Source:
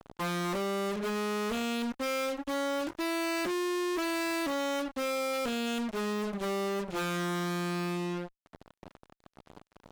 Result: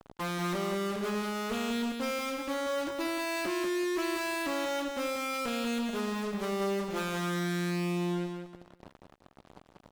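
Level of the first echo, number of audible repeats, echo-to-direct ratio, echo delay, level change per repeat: −5.0 dB, 3, −4.5 dB, 188 ms, −11.5 dB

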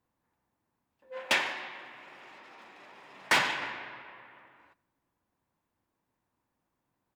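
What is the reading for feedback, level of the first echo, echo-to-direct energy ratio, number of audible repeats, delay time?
41%, −22.0 dB, −21.0 dB, 2, 92 ms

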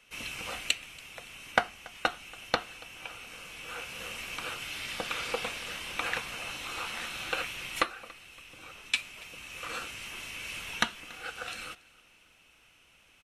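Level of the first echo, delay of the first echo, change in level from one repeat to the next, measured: −23.5 dB, 283 ms, −8.0 dB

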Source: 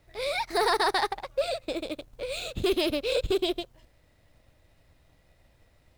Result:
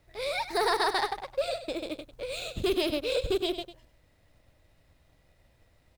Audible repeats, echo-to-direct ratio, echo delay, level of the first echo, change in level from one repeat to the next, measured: 1, −12.0 dB, 99 ms, −12.0 dB, repeats not evenly spaced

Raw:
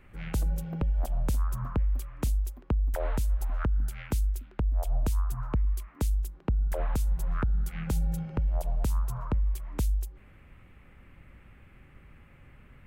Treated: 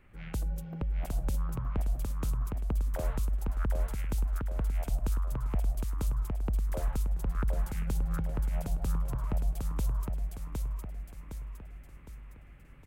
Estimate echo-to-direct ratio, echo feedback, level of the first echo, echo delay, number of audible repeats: −2.0 dB, 46%, −3.0 dB, 761 ms, 5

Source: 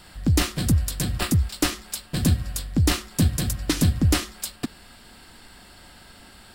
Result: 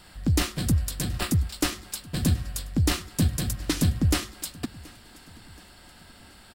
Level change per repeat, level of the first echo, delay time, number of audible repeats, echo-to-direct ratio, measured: −6.5 dB, −23.0 dB, 727 ms, 2, −22.0 dB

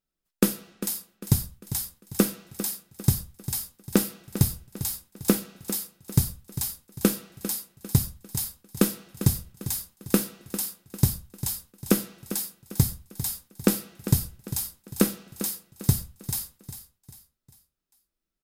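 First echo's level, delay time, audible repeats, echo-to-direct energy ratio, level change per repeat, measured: −12.5 dB, 399 ms, 3, −12.0 dB, −8.0 dB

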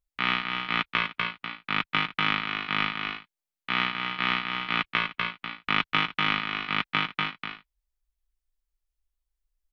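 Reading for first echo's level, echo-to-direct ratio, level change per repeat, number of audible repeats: −5.5 dB, −5.0 dB, repeats not evenly spaced, 2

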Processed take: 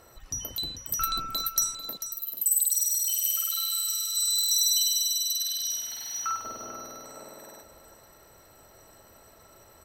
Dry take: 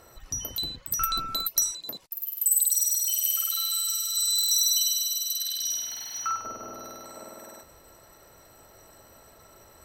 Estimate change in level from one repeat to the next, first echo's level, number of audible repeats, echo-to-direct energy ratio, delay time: −15.0 dB, −11.0 dB, 2, −11.0 dB, 443 ms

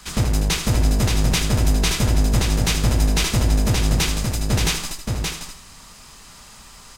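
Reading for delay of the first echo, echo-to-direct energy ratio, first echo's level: 77 ms, −3.0 dB, −9.5 dB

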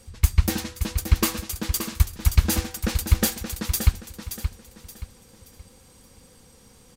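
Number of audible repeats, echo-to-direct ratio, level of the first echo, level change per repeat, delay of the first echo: 3, −8.0 dB, −8.5 dB, −9.5 dB, 575 ms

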